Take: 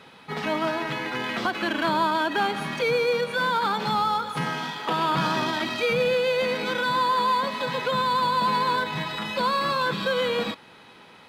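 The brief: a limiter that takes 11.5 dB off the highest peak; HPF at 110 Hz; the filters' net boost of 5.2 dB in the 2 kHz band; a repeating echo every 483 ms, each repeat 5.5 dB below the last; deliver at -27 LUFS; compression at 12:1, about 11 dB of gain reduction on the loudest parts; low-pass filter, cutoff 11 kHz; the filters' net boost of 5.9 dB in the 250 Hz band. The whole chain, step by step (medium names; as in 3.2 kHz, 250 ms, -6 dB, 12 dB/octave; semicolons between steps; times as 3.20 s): high-pass 110 Hz; low-pass 11 kHz; peaking EQ 250 Hz +8 dB; peaking EQ 2 kHz +7 dB; compression 12:1, threshold -28 dBFS; peak limiter -29 dBFS; feedback delay 483 ms, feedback 53%, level -5.5 dB; trim +8.5 dB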